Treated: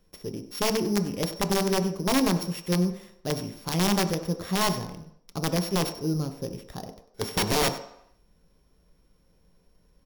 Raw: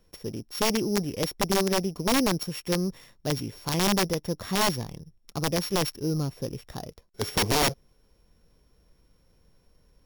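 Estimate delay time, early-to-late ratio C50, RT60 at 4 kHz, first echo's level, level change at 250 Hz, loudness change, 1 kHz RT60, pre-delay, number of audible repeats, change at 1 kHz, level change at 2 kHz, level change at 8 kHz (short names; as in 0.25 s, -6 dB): 97 ms, 11.5 dB, 0.70 s, -17.0 dB, +1.5 dB, 0.0 dB, 0.75 s, 5 ms, 1, -0.5 dB, -1.5 dB, -1.0 dB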